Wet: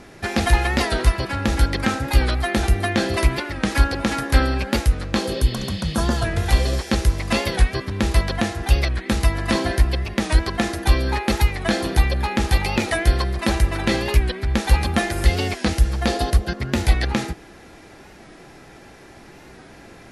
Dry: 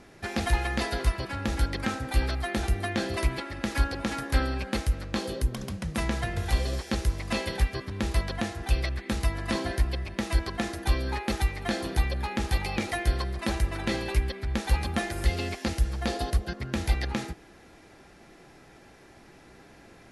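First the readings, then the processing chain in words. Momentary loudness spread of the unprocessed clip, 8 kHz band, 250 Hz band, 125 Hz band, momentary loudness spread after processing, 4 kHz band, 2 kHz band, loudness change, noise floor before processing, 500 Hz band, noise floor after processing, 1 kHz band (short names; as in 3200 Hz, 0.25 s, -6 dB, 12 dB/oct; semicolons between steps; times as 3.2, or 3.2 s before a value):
4 LU, +8.5 dB, +8.5 dB, +8.5 dB, 4 LU, +8.5 dB, +8.5 dB, +8.5 dB, -53 dBFS, +8.5 dB, -45 dBFS, +8.5 dB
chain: spectral repair 5.34–6.23, 1700–5300 Hz before; record warp 45 rpm, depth 100 cents; gain +8.5 dB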